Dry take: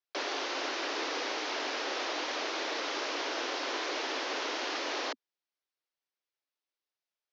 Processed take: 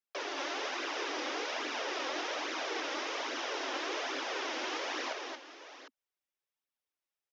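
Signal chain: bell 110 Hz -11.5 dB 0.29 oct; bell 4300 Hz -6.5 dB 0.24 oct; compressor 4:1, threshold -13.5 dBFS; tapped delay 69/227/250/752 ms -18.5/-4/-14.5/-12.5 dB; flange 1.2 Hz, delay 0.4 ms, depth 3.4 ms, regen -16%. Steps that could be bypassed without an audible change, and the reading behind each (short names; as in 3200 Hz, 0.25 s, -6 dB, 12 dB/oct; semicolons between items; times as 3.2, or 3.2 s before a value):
bell 110 Hz: input band starts at 210 Hz; compressor, threshold -13.5 dBFS: input peak -22.0 dBFS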